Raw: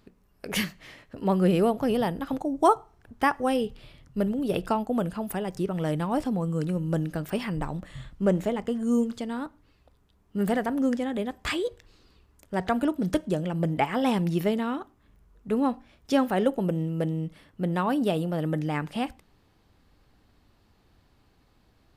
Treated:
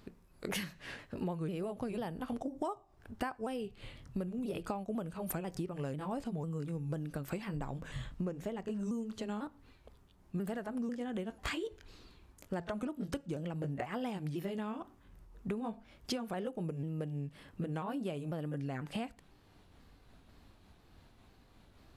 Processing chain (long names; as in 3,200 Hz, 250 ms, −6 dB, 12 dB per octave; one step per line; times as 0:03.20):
pitch shifter swept by a sawtooth −2.5 semitones, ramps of 495 ms
downward compressor 12 to 1, threshold −37 dBFS, peak gain reduction 22 dB
level +2.5 dB